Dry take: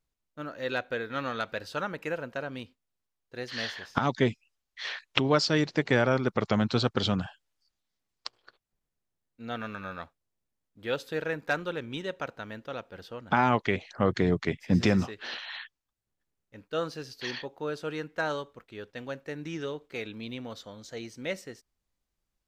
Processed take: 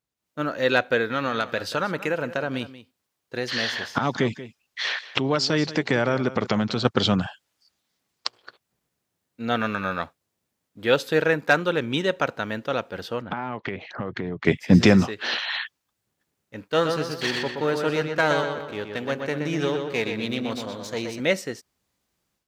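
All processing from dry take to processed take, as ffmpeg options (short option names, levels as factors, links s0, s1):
-filter_complex "[0:a]asettb=1/sr,asplit=3[s0][s1][s2];[s0]atrim=end=1.064[s3];[s1]atrim=start=1.06:end=6.85,asetpts=PTS-STARTPTS,afade=t=in:d=0.004:c=qsin,afade=t=out:st=5.786:d=0.004:c=qsin,acompressor=threshold=0.0178:ratio=2:attack=3.2:release=140:knee=1:detection=peak,aecho=1:1:183:0.168,atrim=end_sample=255339[s4];[s2]atrim=start=6.846[s5];[s3][s4]acrossfade=d=0.004:c1=hsin:c2=qsin[s6];[s6][s5]acrossfade=d=0.004:c1=qsin:c2=hsin,asettb=1/sr,asplit=3[s7][s8][s9];[s7]atrim=end=13.224[s10];[s8]atrim=start=13.22:end=14.45,asetpts=PTS-STARTPTS,afade=t=in:d=0.004:c=qsin,afade=t=out:st=1.226:d=0.004:c=qsin,lowpass=2700,acompressor=threshold=0.0141:ratio=8:attack=3.2:release=140:knee=1:detection=peak[s11];[s9]atrim=start=14.446[s12];[s10][s11]acrossfade=d=0.004:c1=hsin:c2=qsin[s13];[s13][s12]acrossfade=d=0.004:c1=qsin:c2=hsin,asettb=1/sr,asplit=3[s14][s15][s16];[s14]atrim=end=16.644[s17];[s15]atrim=start=16.64:end=21.2,asetpts=PTS-STARTPTS,afade=t=in:d=0.004:c=qsin,afade=t=out:st=4.556:d=0.004:c=qsin,aeval=exprs='if(lt(val(0),0),0.447*val(0),val(0))':c=same,asplit=2[s18][s19];[s19]adelay=123,lowpass=f=4100:p=1,volume=0.562,asplit=2[s20][s21];[s21]adelay=123,lowpass=f=4100:p=1,volume=0.48,asplit=2[s22][s23];[s23]adelay=123,lowpass=f=4100:p=1,volume=0.48,asplit=2[s24][s25];[s25]adelay=123,lowpass=f=4100:p=1,volume=0.48,asplit=2[s26][s27];[s27]adelay=123,lowpass=f=4100:p=1,volume=0.48,asplit=2[s28][s29];[s29]adelay=123,lowpass=f=4100:p=1,volume=0.48[s30];[s18][s20][s22][s24][s26][s28][s30]amix=inputs=7:normalize=0,atrim=end_sample=201096[s31];[s16]atrim=start=21.196[s32];[s17][s31]acrossfade=d=0.004:c1=hsin:c2=qsin[s33];[s33][s32]acrossfade=d=0.004:c1=qsin:c2=hsin,highpass=100,dynaudnorm=f=150:g=3:m=4.22,volume=0.891"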